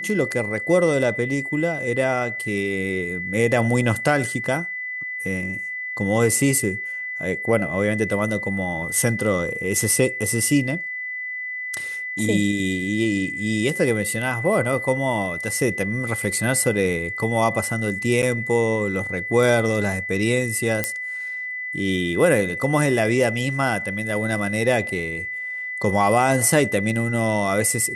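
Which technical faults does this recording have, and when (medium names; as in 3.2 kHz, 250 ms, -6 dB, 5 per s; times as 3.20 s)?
whine 2 kHz -27 dBFS
18.22–18.23 s: dropout 8.6 ms
20.84 s: pop -6 dBFS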